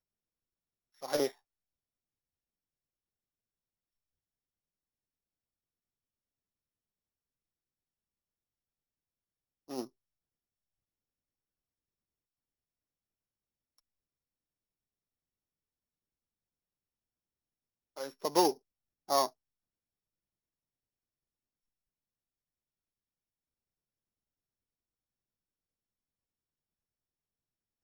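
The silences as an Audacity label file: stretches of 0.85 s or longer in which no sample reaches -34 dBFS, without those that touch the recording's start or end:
1.270000	9.710000	silence
9.820000	17.980000	silence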